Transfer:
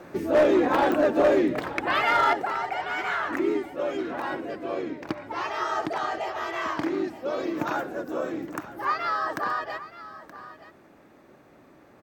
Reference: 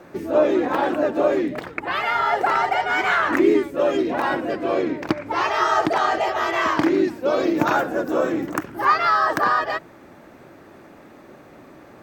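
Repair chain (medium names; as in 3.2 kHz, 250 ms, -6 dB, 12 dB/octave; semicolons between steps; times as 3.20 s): clip repair -14.5 dBFS; de-click; inverse comb 924 ms -15.5 dB; trim 0 dB, from 2.33 s +9 dB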